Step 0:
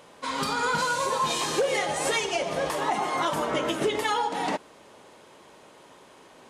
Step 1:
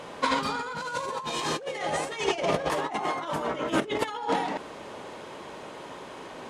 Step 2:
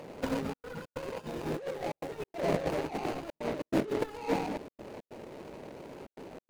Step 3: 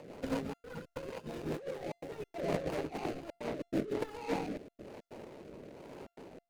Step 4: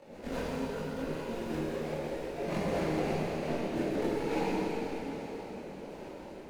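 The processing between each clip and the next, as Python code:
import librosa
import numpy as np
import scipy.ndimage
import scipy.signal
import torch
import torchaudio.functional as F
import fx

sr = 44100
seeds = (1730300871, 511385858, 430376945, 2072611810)

y1 = fx.over_compress(x, sr, threshold_db=-32.0, ratio=-0.5)
y1 = fx.lowpass(y1, sr, hz=3800.0, slope=6)
y1 = y1 * 10.0 ** (4.5 / 20.0)
y2 = scipy.signal.medfilt(y1, 41)
y2 = fx.step_gate(y2, sr, bpm=141, pattern='xxxxx.xx.xxxx', floor_db=-60.0, edge_ms=4.5)
y3 = fx.rotary_switch(y2, sr, hz=5.0, then_hz=1.1, switch_at_s=2.61)
y3 = fx.comb_fb(y3, sr, f0_hz=690.0, decay_s=0.43, harmonics='all', damping=0.0, mix_pct=40)
y3 = y3 * 10.0 ** (2.5 / 20.0)
y4 = fx.chorus_voices(y3, sr, voices=4, hz=1.3, base_ms=23, depth_ms=3.0, mix_pct=60)
y4 = fx.rev_plate(y4, sr, seeds[0], rt60_s=4.1, hf_ratio=1.0, predelay_ms=0, drr_db=-7.5)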